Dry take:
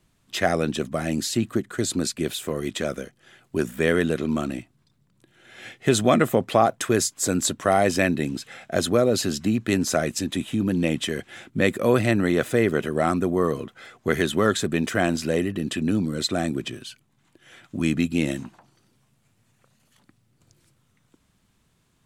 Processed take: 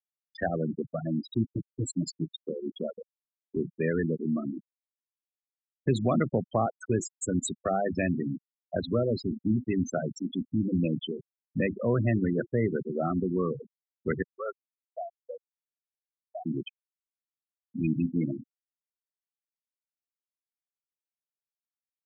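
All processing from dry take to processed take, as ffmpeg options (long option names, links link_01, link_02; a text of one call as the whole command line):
ffmpeg -i in.wav -filter_complex "[0:a]asettb=1/sr,asplit=3[link_01][link_02][link_03];[link_01]atrim=end=1.544[link_04];[link_02]atrim=start=1.54:end=2.33,asetpts=PTS-STARTPTS,afade=type=in:duration=0.004:curve=qsin,afade=type=out:start_time=0.786:duration=0.004:curve=qsin,acrossover=split=230|3000[link_05][link_06][link_07];[link_06]acompressor=threshold=-32dB:ratio=5:attack=3.2:release=140:knee=2.83:detection=peak[link_08];[link_05][link_08][link_07]amix=inputs=3:normalize=0,aecho=1:1:6.7:0.79,atrim=end_sample=34839,acrusher=bits=3:mix=0:aa=0.5[link_09];[link_03]atrim=start=2.326[link_10];[link_04][link_09]acrossfade=duration=0.004:curve1=hsin:curve2=qsin[link_11];[link_11][link_10]acrossfade=duration=0.004:curve1=qsin:curve2=hsin,asettb=1/sr,asplit=3[link_12][link_13][link_14];[link_12]atrim=end=14.224[link_15];[link_13]atrim=start=14.22:end=16.46,asetpts=PTS-STARTPTS,afade=type=in:duration=0.004:curve=qsin,afade=type=out:start_time=2.236:duration=0.004:curve=qsin,aeval=exprs='val(0)+0.5*0.0531*sgn(val(0))':channel_layout=same,agate=range=-7dB:threshold=-18dB:ratio=16:release=100:detection=peak,asuperpass=centerf=820:order=4:qfactor=1.2[link_16];[link_14]atrim=start=16.456[link_17];[link_15][link_16]acrossfade=duration=0.004:curve1=hsin:curve2=qsin[link_18];[link_18][link_17]acrossfade=duration=0.004:curve1=qsin:curve2=hsin,bandreject=frequency=50:width_type=h:width=6,bandreject=frequency=100:width_type=h:width=6,bandreject=frequency=150:width_type=h:width=6,bandreject=frequency=200:width_type=h:width=6,bandreject=frequency=250:width_type=h:width=6,bandreject=frequency=300:width_type=h:width=6,bandreject=frequency=350:width_type=h:width=6,afftfilt=real='re*gte(hypot(re,im),0.178)':imag='im*gte(hypot(re,im),0.178)':win_size=1024:overlap=0.75,acrossover=split=200[link_19][link_20];[link_20]acompressor=threshold=-40dB:ratio=1.5[link_21];[link_19][link_21]amix=inputs=2:normalize=0" out.wav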